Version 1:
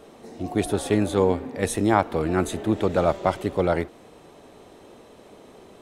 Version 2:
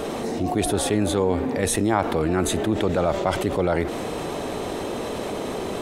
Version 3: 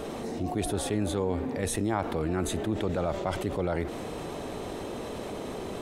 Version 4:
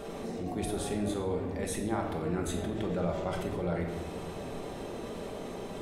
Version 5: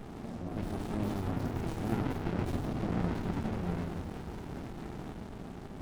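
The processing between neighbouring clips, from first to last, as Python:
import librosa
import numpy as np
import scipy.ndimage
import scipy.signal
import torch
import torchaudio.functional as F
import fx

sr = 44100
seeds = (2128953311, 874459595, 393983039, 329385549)

y1 = fx.env_flatten(x, sr, amount_pct=70)
y1 = y1 * 10.0 ** (-3.0 / 20.0)
y2 = fx.low_shelf(y1, sr, hz=170.0, db=5.0)
y2 = y2 * 10.0 ** (-8.5 / 20.0)
y3 = fx.room_shoebox(y2, sr, seeds[0], volume_m3=490.0, walls='mixed', distance_m=1.2)
y3 = y3 * 10.0 ** (-6.5 / 20.0)
y4 = fx.echo_pitch(y3, sr, ms=527, semitones=4, count=2, db_per_echo=-3.0)
y4 = fx.running_max(y4, sr, window=65)
y4 = y4 * 10.0 ** (-1.0 / 20.0)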